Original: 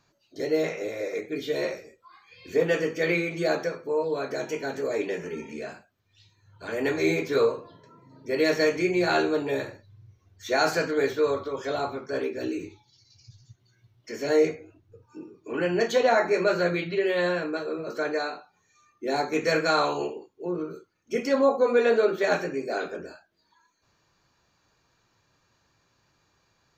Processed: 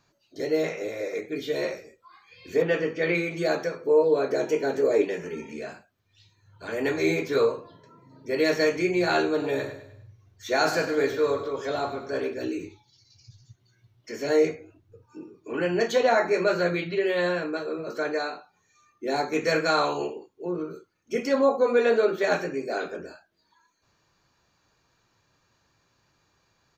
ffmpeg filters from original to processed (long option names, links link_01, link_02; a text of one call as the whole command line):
ffmpeg -i in.wav -filter_complex "[0:a]asettb=1/sr,asplit=3[link_01][link_02][link_03];[link_01]atrim=end=2.624[link_04];[link_02]atrim=start=2.62:end=3.15,asetpts=PTS-STARTPTS,afade=type=in:duration=0.004:curve=qsin,afade=type=out:start_time=0.526:duration=0.004:curve=qsin,lowpass=4000[link_05];[link_03]atrim=start=3.146[link_06];[link_04][link_05]acrossfade=duration=0.004:curve1=hsin:curve2=qsin[link_07];[link_07][link_06]acrossfade=duration=0.004:curve1=qsin:curve2=hsin,asettb=1/sr,asplit=3[link_08][link_09][link_10];[link_08]atrim=end=3.814[link_11];[link_09]atrim=start=3.81:end=5.05,asetpts=PTS-STARTPTS,afade=type=in:duration=0.004:curve=qsin,afade=type=out:start_time=1.236:duration=0.004:curve=qsin,equalizer=frequency=420:width_type=o:width=1.4:gain=7.5[link_12];[link_10]atrim=start=5.046[link_13];[link_11][link_12]acrossfade=duration=0.004:curve1=hsin:curve2=qsin[link_14];[link_14][link_13]acrossfade=duration=0.004:curve1=qsin:curve2=hsin,asplit=3[link_15][link_16][link_17];[link_15]afade=type=out:start_time=9.38:duration=0.02[link_18];[link_16]aecho=1:1:101|202|303|404:0.266|0.117|0.0515|0.0227,afade=type=in:start_time=9.38:duration=0.02,afade=type=out:start_time=12.33:duration=0.02[link_19];[link_17]afade=type=in:start_time=12.33:duration=0.02[link_20];[link_18][link_19][link_20]amix=inputs=3:normalize=0" out.wav